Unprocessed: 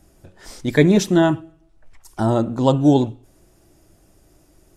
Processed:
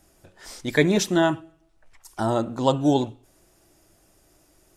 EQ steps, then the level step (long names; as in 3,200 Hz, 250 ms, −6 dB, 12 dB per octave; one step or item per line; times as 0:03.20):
low-shelf EQ 430 Hz −9 dB
0.0 dB